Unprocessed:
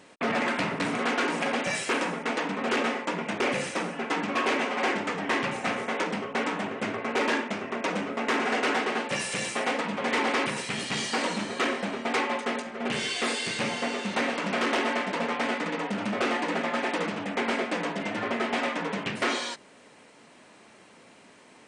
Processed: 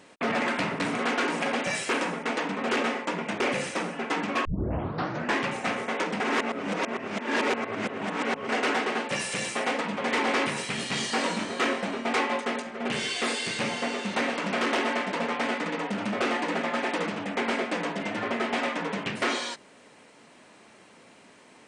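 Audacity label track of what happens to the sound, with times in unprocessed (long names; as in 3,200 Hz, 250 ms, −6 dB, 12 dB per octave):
4.450000	4.450000	tape start 0.94 s
6.200000	8.490000	reverse
10.260000	12.400000	double-tracking delay 22 ms −8 dB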